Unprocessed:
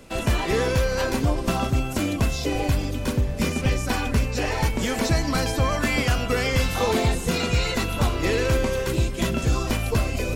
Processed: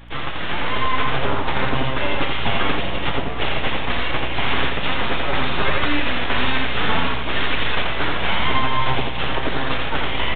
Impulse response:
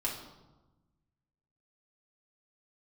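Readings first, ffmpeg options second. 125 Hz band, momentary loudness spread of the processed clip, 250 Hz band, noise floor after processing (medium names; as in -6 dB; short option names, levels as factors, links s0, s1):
-4.5 dB, 3 LU, -2.0 dB, -21 dBFS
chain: -filter_complex "[0:a]highpass=f=500:p=1,aecho=1:1:7.3:0.85,aresample=16000,aeval=exprs='abs(val(0))':c=same,aresample=44100,alimiter=limit=0.112:level=0:latency=1:release=381,aeval=exprs='val(0)+0.00398*(sin(2*PI*60*n/s)+sin(2*PI*2*60*n/s)/2+sin(2*PI*3*60*n/s)/3+sin(2*PI*4*60*n/s)/4+sin(2*PI*5*60*n/s)/5)':c=same,aresample=8000,aresample=44100,asplit=2[s0][s1];[s1]aecho=0:1:85:0.668[s2];[s0][s2]amix=inputs=2:normalize=0,dynaudnorm=f=470:g=3:m=2,volume=1.88"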